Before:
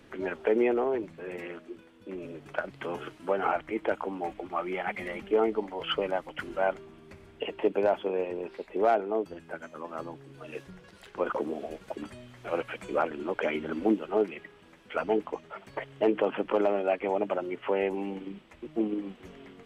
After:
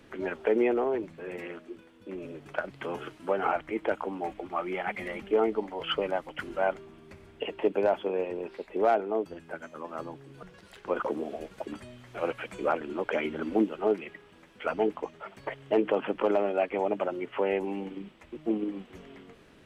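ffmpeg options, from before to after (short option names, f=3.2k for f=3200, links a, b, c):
-filter_complex "[0:a]asplit=2[a][b];[a]atrim=end=10.432[c];[b]atrim=start=10.728[d];[c][d]acrossfade=d=0.004:c1=hsin:c2=hsin"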